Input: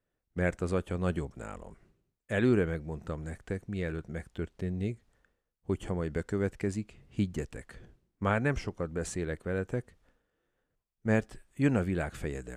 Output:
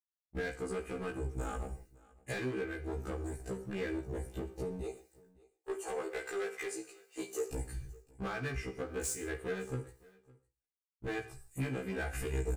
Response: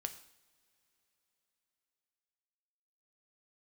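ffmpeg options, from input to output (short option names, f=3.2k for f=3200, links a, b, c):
-filter_complex "[0:a]aemphasis=mode=production:type=50kf,agate=range=-33dB:threshold=-58dB:ratio=3:detection=peak,asettb=1/sr,asplit=3[a][b][c];[a]atrim=end=4.814[d];[b]atrim=start=4.81:end=7.53,asetpts=PTS-STARTPTS,afade=t=in:d=0.004:c=qsin,afade=t=out:st=2.716:d=0.004:c=qsin,highpass=f=460:w=0.5412,highpass=f=460:w=1.3066[e];[c]atrim=start=7.526[f];[d][e]acrossfade=d=0.004:c1=hsin:c2=qsin[g];[g][f]acrossfade=d=0.004:c1=qsin:c2=hsin,afwtdn=0.00708,highshelf=f=2.7k:g=10.5,bandreject=f=3.3k:w=5.5,aecho=1:1:2.5:0.63,acompressor=threshold=-38dB:ratio=20,asoftclip=type=hard:threshold=-38.5dB,aecho=1:1:559:0.0631[h];[1:a]atrim=start_sample=2205,afade=t=out:st=0.23:d=0.01,atrim=end_sample=10584[i];[h][i]afir=irnorm=-1:irlink=0,afftfilt=real='re*1.73*eq(mod(b,3),0)':imag='im*1.73*eq(mod(b,3),0)':win_size=2048:overlap=0.75,volume=11dB"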